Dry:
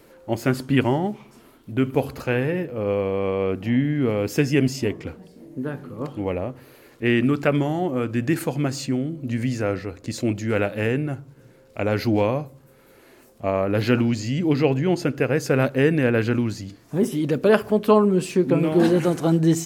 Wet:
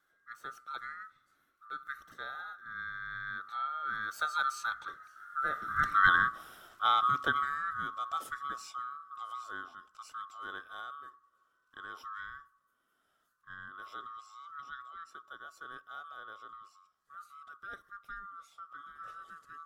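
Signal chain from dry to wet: band-swap scrambler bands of 1000 Hz; Doppler pass-by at 6.02, 13 m/s, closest 4 m; gain +2 dB

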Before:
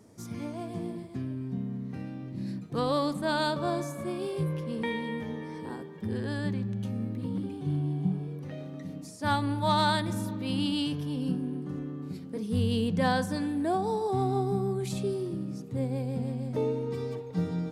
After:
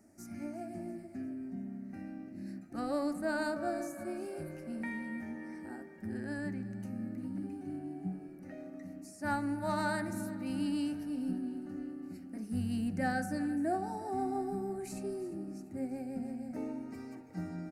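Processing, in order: fixed phaser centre 690 Hz, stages 8; de-hum 68.53 Hz, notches 36; on a send: feedback echo 0.346 s, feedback 57%, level -18 dB; on the sum: gain -3 dB

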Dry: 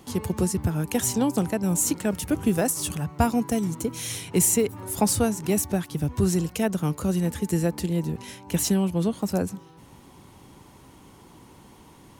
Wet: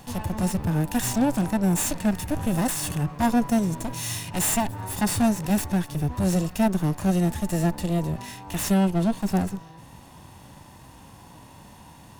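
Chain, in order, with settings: minimum comb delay 1.1 ms; soft clip -21.5 dBFS, distortion -12 dB; harmonic-percussive split percussive -9 dB; gain +7 dB

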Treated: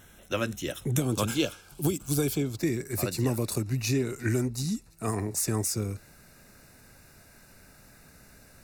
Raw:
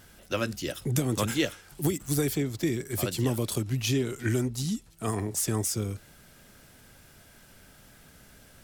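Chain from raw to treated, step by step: Butterworth band-stop 4700 Hz, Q 4, from 1 s 1900 Hz, from 2.57 s 3200 Hz

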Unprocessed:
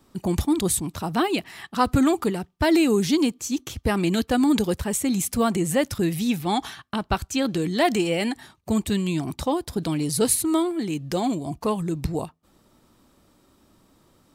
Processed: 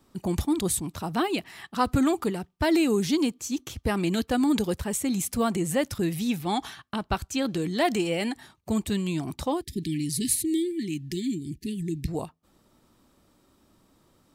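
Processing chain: 9.62–12.08 brick-wall FIR band-stop 410–1700 Hz; gain -3.5 dB

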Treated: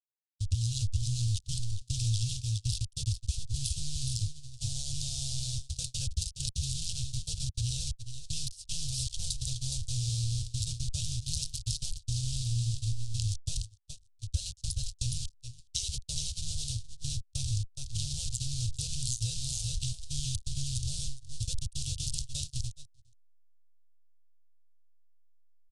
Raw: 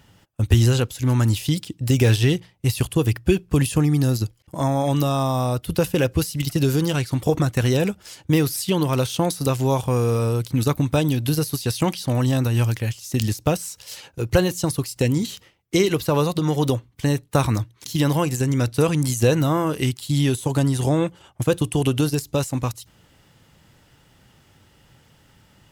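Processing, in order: level-crossing sampler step -21 dBFS; echo 0.417 s -6.5 dB; soft clip -12.5 dBFS, distortion -17 dB; gate -23 dBFS, range -32 dB; AGC gain up to 12 dB; inverse Chebyshev band-stop 180–2100 Hz, stop band 40 dB; compressor 2:1, threshold -23 dBFS, peak gain reduction 7.5 dB; steep low-pass 9700 Hz 48 dB/oct; gain -6.5 dB

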